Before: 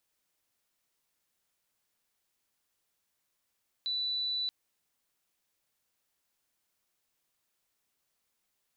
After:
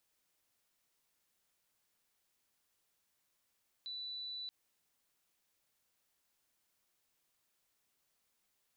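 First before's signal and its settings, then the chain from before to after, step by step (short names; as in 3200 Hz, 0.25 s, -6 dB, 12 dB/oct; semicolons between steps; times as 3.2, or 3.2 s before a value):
tone sine 3970 Hz -30 dBFS 0.63 s
limiter -41 dBFS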